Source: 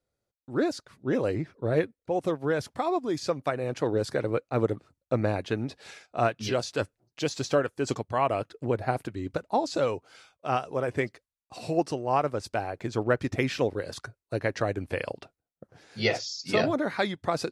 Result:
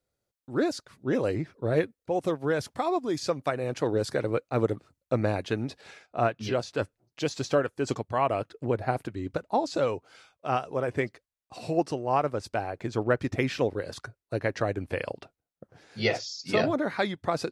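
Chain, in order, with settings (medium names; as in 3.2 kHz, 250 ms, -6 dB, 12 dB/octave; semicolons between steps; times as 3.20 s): treble shelf 3.8 kHz +2.5 dB, from 5.81 s -8.5 dB, from 6.82 s -3 dB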